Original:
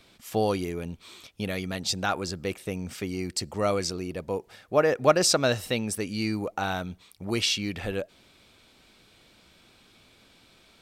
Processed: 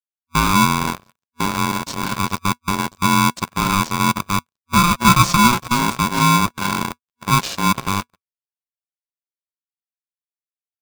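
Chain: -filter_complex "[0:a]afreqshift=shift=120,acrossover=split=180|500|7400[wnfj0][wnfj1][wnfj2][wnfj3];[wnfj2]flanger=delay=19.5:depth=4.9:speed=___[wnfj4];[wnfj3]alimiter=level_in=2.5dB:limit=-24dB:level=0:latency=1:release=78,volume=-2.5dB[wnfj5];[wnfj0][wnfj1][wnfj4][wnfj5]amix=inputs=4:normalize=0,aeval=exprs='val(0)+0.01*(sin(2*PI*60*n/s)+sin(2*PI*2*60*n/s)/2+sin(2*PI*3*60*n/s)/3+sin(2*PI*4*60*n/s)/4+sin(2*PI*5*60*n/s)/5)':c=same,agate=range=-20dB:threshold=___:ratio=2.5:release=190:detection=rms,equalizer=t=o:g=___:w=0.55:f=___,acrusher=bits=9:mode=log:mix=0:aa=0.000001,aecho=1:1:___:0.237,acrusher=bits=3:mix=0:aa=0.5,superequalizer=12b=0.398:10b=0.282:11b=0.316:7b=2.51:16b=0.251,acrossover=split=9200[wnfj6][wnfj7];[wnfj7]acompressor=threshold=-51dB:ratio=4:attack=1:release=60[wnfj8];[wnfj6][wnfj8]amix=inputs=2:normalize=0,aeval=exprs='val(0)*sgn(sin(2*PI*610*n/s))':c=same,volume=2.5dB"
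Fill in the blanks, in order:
0.52, -37dB, 12, 390, 454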